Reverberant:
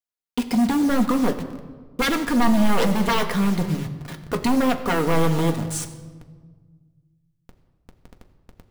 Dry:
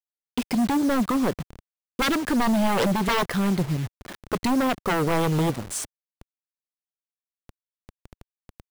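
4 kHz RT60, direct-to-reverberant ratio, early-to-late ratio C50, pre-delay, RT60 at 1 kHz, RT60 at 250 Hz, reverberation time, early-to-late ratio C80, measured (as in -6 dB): 0.95 s, 4.0 dB, 11.5 dB, 4 ms, 1.4 s, 2.2 s, 1.5 s, 12.5 dB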